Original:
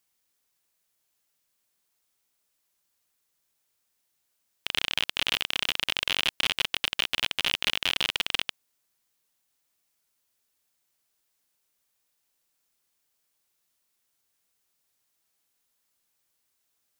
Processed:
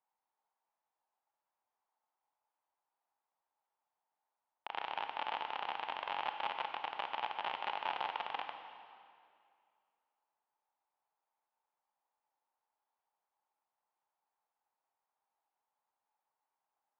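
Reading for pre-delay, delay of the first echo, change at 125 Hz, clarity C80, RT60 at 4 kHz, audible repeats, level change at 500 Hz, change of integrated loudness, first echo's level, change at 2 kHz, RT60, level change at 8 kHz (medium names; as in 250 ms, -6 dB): 25 ms, no echo, under -20 dB, 7.5 dB, 2.0 s, no echo, -4.5 dB, -13.0 dB, no echo, -14.0 dB, 2.3 s, under -35 dB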